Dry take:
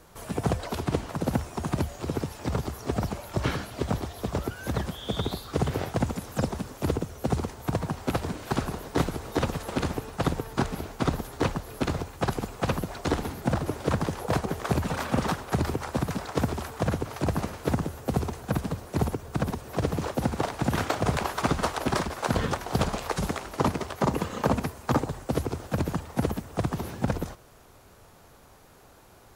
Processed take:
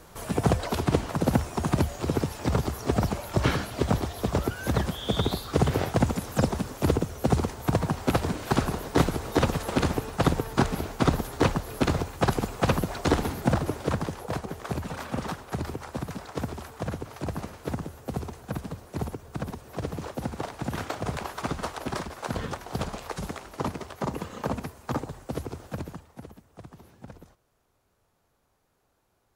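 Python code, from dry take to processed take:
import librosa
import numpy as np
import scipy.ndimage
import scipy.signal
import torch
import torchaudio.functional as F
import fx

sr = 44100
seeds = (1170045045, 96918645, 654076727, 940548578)

y = fx.gain(x, sr, db=fx.line((13.4, 3.5), (14.36, -5.5), (25.7, -5.5), (26.25, -18.0)))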